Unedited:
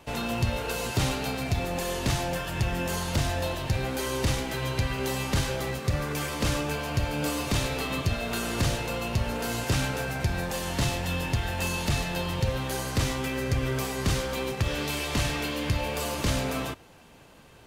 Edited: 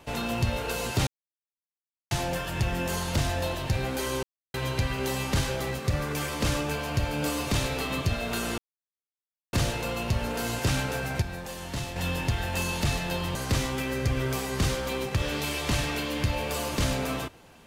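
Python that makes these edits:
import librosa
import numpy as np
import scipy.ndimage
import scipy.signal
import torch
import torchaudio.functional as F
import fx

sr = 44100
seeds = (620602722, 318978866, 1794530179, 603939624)

y = fx.edit(x, sr, fx.silence(start_s=1.07, length_s=1.04),
    fx.silence(start_s=4.23, length_s=0.31),
    fx.insert_silence(at_s=8.58, length_s=0.95),
    fx.clip_gain(start_s=10.27, length_s=0.74, db=-6.5),
    fx.cut(start_s=12.4, length_s=0.41), tone=tone)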